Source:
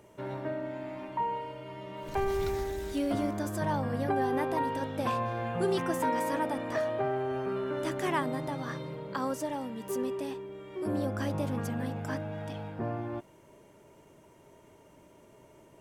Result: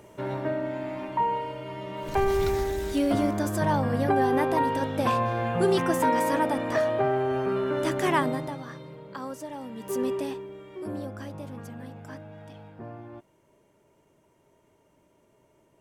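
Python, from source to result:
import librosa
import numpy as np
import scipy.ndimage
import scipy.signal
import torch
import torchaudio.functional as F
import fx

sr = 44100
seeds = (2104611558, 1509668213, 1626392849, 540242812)

y = fx.gain(x, sr, db=fx.line((8.27, 6.0), (8.69, -4.0), (9.48, -4.0), (10.1, 6.0), (11.31, -7.0)))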